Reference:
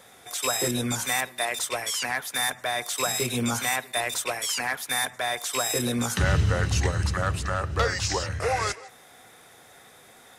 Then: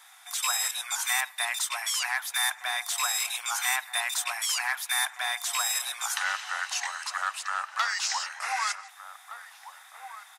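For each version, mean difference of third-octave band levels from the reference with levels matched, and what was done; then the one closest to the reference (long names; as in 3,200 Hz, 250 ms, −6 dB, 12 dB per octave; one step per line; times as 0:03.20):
12.5 dB: Butterworth high-pass 800 Hz 48 dB per octave
slap from a distant wall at 260 metres, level −10 dB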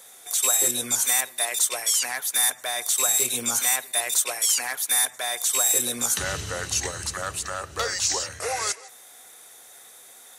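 7.0 dB: bass and treble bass −12 dB, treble +13 dB
notch filter 5,100 Hz, Q 12
level −3 dB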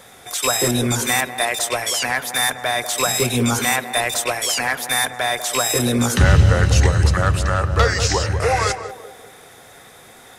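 2.0 dB: low-shelf EQ 89 Hz +6.5 dB
on a send: feedback echo with a band-pass in the loop 193 ms, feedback 49%, band-pass 440 Hz, level −7.5 dB
on the sum: level +7 dB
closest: third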